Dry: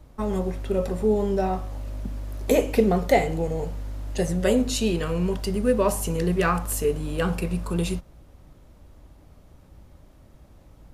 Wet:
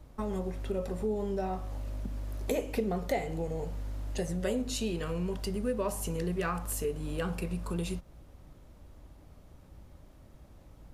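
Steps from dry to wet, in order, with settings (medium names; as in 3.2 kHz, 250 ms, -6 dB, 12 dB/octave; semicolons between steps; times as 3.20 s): compression 2:1, threshold -31 dBFS, peak gain reduction 10 dB; trim -3 dB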